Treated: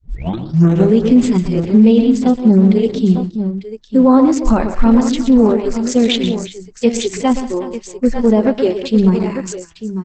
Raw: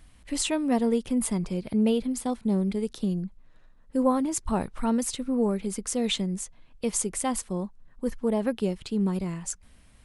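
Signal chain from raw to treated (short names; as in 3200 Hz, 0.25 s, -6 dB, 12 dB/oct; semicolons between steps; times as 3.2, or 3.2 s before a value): tape start at the beginning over 0.99 s; LPF 4900 Hz 12 dB/oct; notches 50/100/150/200 Hz; spectral noise reduction 22 dB; low shelf 260 Hz +10.5 dB; tapped delay 0.121/0.181/0.363/0.897 s -9.5/-19/-18.5/-12 dB; maximiser +14 dB; gain -1.5 dB; Opus 10 kbps 48000 Hz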